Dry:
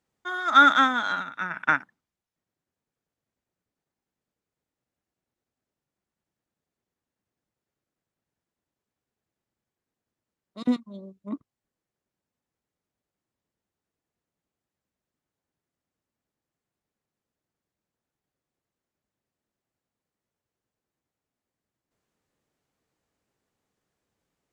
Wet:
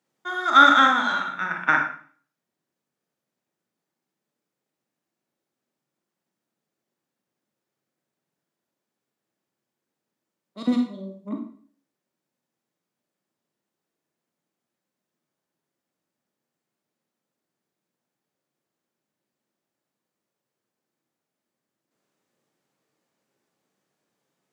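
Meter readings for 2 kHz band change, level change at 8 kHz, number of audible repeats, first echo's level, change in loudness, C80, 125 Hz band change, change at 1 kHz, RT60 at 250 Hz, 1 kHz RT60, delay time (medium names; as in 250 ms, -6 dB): +3.0 dB, no reading, no echo, no echo, +2.5 dB, 10.0 dB, no reading, +3.0 dB, 0.50 s, 0.45 s, no echo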